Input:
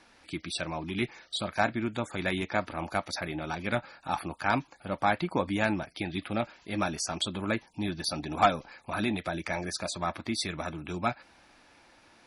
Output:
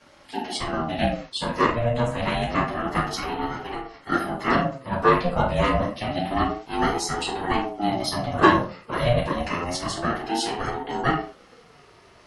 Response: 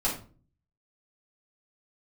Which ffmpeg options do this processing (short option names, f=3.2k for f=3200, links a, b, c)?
-filter_complex "[0:a]asettb=1/sr,asplit=3[a][b][c];[a]atrim=end=3.434[d];[b]atrim=start=3.43:end=3.94,asetpts=PTS-STARTPTS,afade=t=in:d=0.004:c=qsin,afade=t=out:st=0.506:d=0.004:c=qsin,acompressor=threshold=-36dB:ratio=6[e];[c]atrim=start=3.936[f];[d][e]acrossfade=d=0.004:c1=hsin:c2=qsin[g];[g][f]acrossfade=d=0.004:c1=qsin:c2=hsin[h];[1:a]atrim=start_sample=2205,afade=t=out:st=0.3:d=0.01,atrim=end_sample=13671[i];[h][i]afir=irnorm=-1:irlink=0,aeval=exprs='val(0)*sin(2*PI*470*n/s+470*0.25/0.28*sin(2*PI*0.28*n/s))':c=same"